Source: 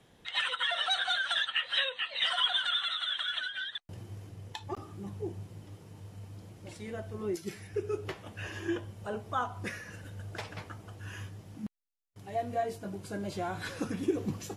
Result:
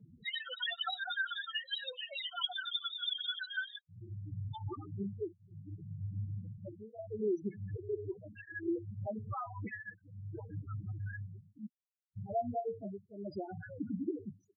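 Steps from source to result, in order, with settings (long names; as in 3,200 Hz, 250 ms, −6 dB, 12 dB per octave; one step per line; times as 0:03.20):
fade-out on the ending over 1.99 s
downward compressor 5 to 1, threshold −41 dBFS, peak gain reduction 15.5 dB
spectral peaks only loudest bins 4
through-zero flanger with one copy inverted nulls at 0.65 Hz, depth 2.7 ms
level +11.5 dB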